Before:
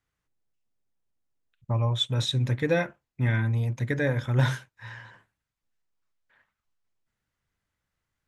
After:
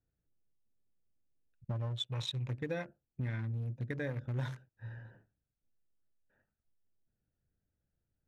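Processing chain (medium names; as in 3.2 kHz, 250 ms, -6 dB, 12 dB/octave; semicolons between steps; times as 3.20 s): local Wiener filter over 41 samples; 2.07–2.50 s: fifteen-band graphic EQ 250 Hz -9 dB, 1 kHz +11 dB, 2.5 kHz +9 dB; compression 3:1, threshold -40 dBFS, peak gain reduction 16 dB; trim +1 dB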